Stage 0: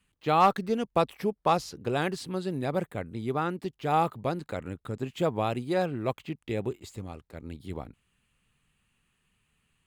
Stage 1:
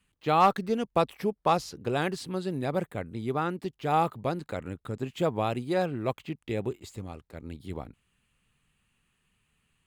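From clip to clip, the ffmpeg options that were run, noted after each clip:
ffmpeg -i in.wav -af anull out.wav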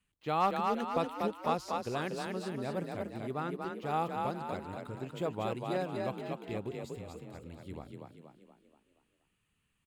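ffmpeg -i in.wav -filter_complex "[0:a]asplit=7[link_01][link_02][link_03][link_04][link_05][link_06][link_07];[link_02]adelay=239,afreqshift=35,volume=-3.5dB[link_08];[link_03]adelay=478,afreqshift=70,volume=-9.9dB[link_09];[link_04]adelay=717,afreqshift=105,volume=-16.3dB[link_10];[link_05]adelay=956,afreqshift=140,volume=-22.6dB[link_11];[link_06]adelay=1195,afreqshift=175,volume=-29dB[link_12];[link_07]adelay=1434,afreqshift=210,volume=-35.4dB[link_13];[link_01][link_08][link_09][link_10][link_11][link_12][link_13]amix=inputs=7:normalize=0,volume=-8dB" out.wav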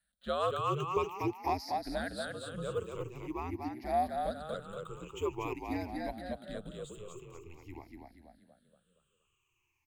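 ffmpeg -i in.wav -af "afftfilt=real='re*pow(10,19/40*sin(2*PI*(0.79*log(max(b,1)*sr/1024/100)/log(2)-(-0.47)*(pts-256)/sr)))':imag='im*pow(10,19/40*sin(2*PI*(0.79*log(max(b,1)*sr/1024/100)/log(2)-(-0.47)*(pts-256)/sr)))':win_size=1024:overlap=0.75,afreqshift=-86,bass=frequency=250:gain=-4,treble=frequency=4000:gain=2,volume=-4.5dB" out.wav

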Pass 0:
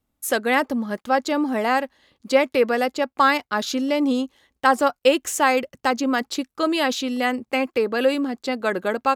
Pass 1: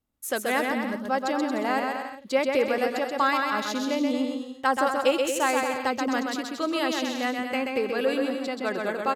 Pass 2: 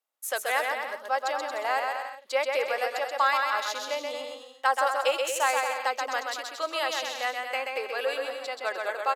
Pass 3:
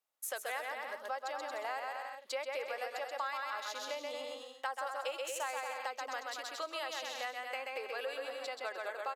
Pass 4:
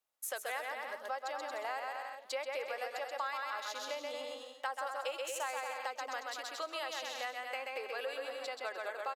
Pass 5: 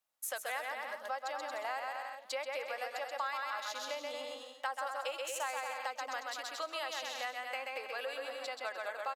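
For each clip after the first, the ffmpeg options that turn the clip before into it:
ffmpeg -i in.wav -af "aecho=1:1:130|227.5|300.6|355.5|396.6:0.631|0.398|0.251|0.158|0.1,volume=-6.5dB" out.wav
ffmpeg -i in.wav -af "highpass=frequency=550:width=0.5412,highpass=frequency=550:width=1.3066" out.wav
ffmpeg -i in.wav -af "acompressor=threshold=-37dB:ratio=3,volume=-2dB" out.wav
ffmpeg -i in.wav -filter_complex "[0:a]asplit=2[link_01][link_02];[link_02]adelay=553.9,volume=-22dB,highshelf=frequency=4000:gain=-12.5[link_03];[link_01][link_03]amix=inputs=2:normalize=0" out.wav
ffmpeg -i in.wav -af "equalizer=frequency=400:width=4.1:gain=-10.5,volume=1dB" out.wav

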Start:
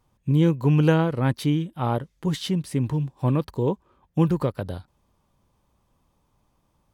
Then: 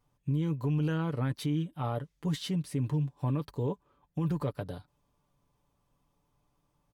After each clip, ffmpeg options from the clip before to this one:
ffmpeg -i in.wav -af "aecho=1:1:6.9:0.51,alimiter=limit=-15.5dB:level=0:latency=1:release=18,volume=-7.5dB" out.wav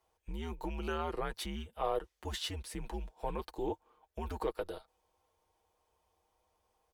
ffmpeg -i in.wav -af "lowshelf=frequency=400:width_type=q:width=1.5:gain=-11,afreqshift=-95,volume=1dB" out.wav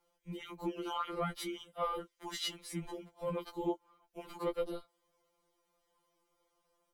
ffmpeg -i in.wav -af "afftfilt=real='re*2.83*eq(mod(b,8),0)':imag='im*2.83*eq(mod(b,8),0)':win_size=2048:overlap=0.75,volume=2.5dB" out.wav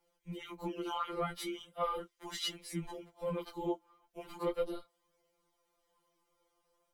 ffmpeg -i in.wav -af "flanger=delay=6.2:depth=7.9:regen=-42:speed=0.38:shape=sinusoidal,volume=4dB" out.wav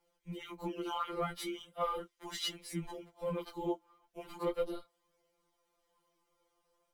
ffmpeg -i in.wav -ar 44100 -c:a adpcm_ima_wav out.wav

